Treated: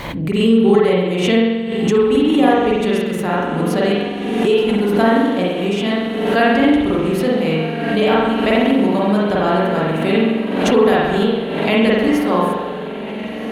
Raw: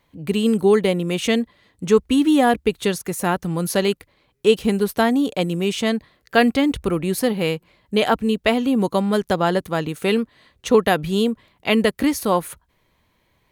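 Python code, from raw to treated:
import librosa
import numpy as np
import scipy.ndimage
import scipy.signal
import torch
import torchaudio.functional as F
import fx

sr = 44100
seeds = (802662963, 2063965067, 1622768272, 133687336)

y = fx.high_shelf(x, sr, hz=6300.0, db=-7.0)
y = fx.echo_diffused(y, sr, ms=1496, feedback_pct=64, wet_db=-11.5)
y = fx.rev_spring(y, sr, rt60_s=1.2, pass_ms=(44,), chirp_ms=25, drr_db=-6.5)
y = fx.pre_swell(y, sr, db_per_s=36.0)
y = y * librosa.db_to_amplitude(-4.0)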